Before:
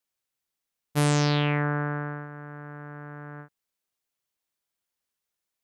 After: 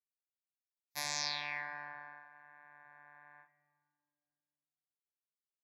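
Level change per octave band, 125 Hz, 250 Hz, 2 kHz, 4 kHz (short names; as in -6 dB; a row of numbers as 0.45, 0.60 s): -35.0, -33.0, -9.0, -5.5 dB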